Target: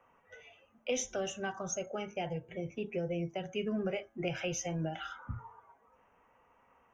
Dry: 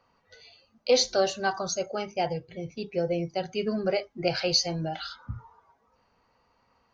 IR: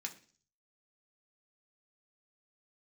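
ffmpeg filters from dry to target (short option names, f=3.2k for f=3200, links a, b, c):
-filter_complex "[0:a]asuperstop=centerf=4400:order=4:qfactor=1.3,bass=f=250:g=-6,treble=f=4k:g=-4,acrossover=split=250|2900[a][b][c];[b]acompressor=threshold=-39dB:ratio=6[d];[a][d][c]amix=inputs=3:normalize=0,bandreject=f=111.6:t=h:w=4,bandreject=f=223.2:t=h:w=4,bandreject=f=334.8:t=h:w=4,bandreject=f=446.4:t=h:w=4,bandreject=f=558:t=h:w=4,bandreject=f=669.6:t=h:w=4,bandreject=f=781.2:t=h:w=4,bandreject=f=892.8:t=h:w=4,bandreject=f=1.0044k:t=h:w=4,bandreject=f=1.116k:t=h:w=4,bandreject=f=1.2276k:t=h:w=4,bandreject=f=1.3392k:t=h:w=4,bandreject=f=1.4508k:t=h:w=4,bandreject=f=1.5624k:t=h:w=4,bandreject=f=1.674k:t=h:w=4,bandreject=f=1.7856k:t=h:w=4,volume=2dB"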